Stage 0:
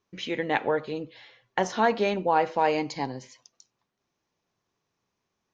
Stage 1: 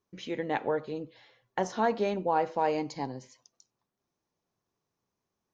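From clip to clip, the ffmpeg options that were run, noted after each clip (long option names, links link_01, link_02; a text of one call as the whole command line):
ffmpeg -i in.wav -af "equalizer=frequency=2600:width_type=o:width=1.9:gain=-6.5,volume=-3dB" out.wav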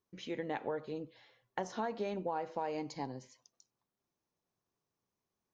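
ffmpeg -i in.wav -af "acompressor=threshold=-28dB:ratio=6,volume=-4.5dB" out.wav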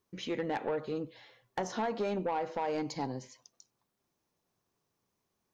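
ffmpeg -i in.wav -af "asoftclip=type=tanh:threshold=-32dB,volume=6.5dB" out.wav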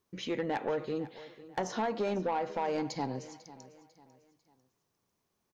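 ffmpeg -i in.wav -af "aecho=1:1:497|994|1491:0.133|0.0493|0.0183,volume=1dB" out.wav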